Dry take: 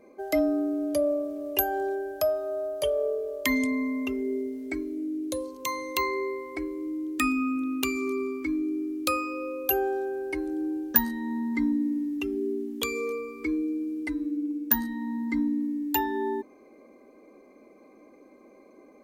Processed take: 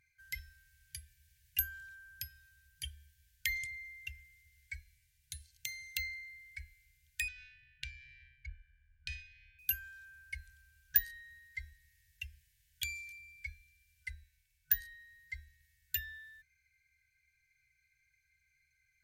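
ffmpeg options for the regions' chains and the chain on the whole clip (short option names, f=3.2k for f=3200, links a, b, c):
-filter_complex "[0:a]asettb=1/sr,asplit=3[a][b][c];[a]atrim=end=7.284[d];[b]atrim=start=7.28:end=9.59,asetpts=PTS-STARTPTS,afade=t=in:d=0.004:c=qsin,afade=t=out:st=2.306:d=0.004:c=qsin,asubboost=boost=5:cutoff=77,adynamicsmooth=sensitivity=1.5:basefreq=800,lowpass=8.9k[e];[c]atrim=start=9.586[f];[d][e]acrossfade=d=0.004:c1=hsin:c2=qsin[g];[g][f]acrossfade=d=0.004:c1=qsin:c2=hsin,afftfilt=real='re*(1-between(b*sr/4096,140,1500))':imag='im*(1-between(b*sr/4096,140,1500))':win_size=4096:overlap=0.75,equalizer=f=74:t=o:w=0.26:g=14,volume=-6.5dB"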